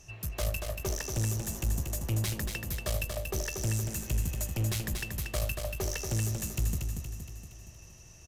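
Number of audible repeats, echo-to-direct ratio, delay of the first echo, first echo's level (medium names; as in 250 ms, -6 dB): 6, -3.5 dB, 234 ms, -5.0 dB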